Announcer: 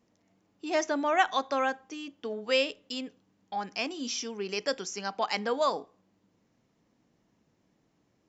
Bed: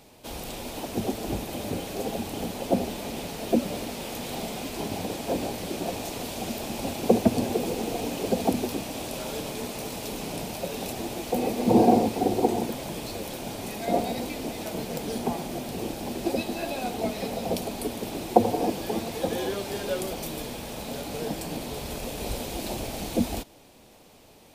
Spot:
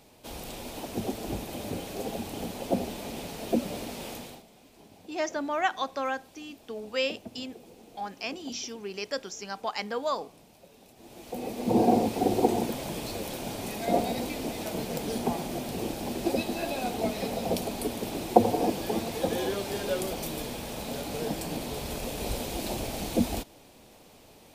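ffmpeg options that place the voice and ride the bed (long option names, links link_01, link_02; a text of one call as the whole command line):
ffmpeg -i stem1.wav -i stem2.wav -filter_complex "[0:a]adelay=4450,volume=-2.5dB[link_01];[1:a]volume=18.5dB,afade=type=out:start_time=4.09:duration=0.34:silence=0.112202,afade=type=in:start_time=10.96:duration=1.38:silence=0.0794328[link_02];[link_01][link_02]amix=inputs=2:normalize=0" out.wav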